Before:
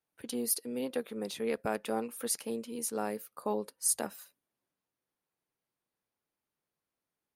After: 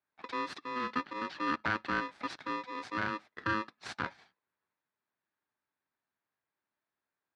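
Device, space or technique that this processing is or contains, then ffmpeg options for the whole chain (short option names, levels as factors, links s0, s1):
ring modulator pedal into a guitar cabinet: -af "aeval=exprs='val(0)*sgn(sin(2*PI*750*n/s))':c=same,highpass=96,equalizer=f=500:t=q:w=4:g=-5,equalizer=f=780:t=q:w=4:g=4,equalizer=f=1600:t=q:w=4:g=6,equalizer=f=3000:t=q:w=4:g=-7,lowpass=f=3900:w=0.5412,lowpass=f=3900:w=1.3066"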